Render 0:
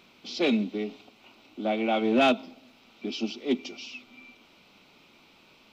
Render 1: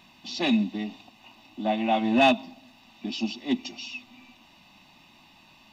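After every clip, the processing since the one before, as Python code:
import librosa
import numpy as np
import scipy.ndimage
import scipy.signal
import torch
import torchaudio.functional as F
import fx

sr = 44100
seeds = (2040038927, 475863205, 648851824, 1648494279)

y = x + 0.94 * np.pad(x, (int(1.1 * sr / 1000.0), 0))[:len(x)]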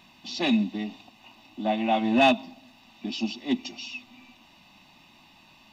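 y = x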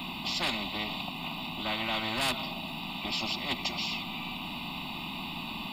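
y = fx.fixed_phaser(x, sr, hz=1700.0, stages=6)
y = fx.dmg_noise_band(y, sr, seeds[0], low_hz=160.0, high_hz=260.0, level_db=-44.0)
y = fx.spectral_comp(y, sr, ratio=4.0)
y = y * librosa.db_to_amplitude(-6.5)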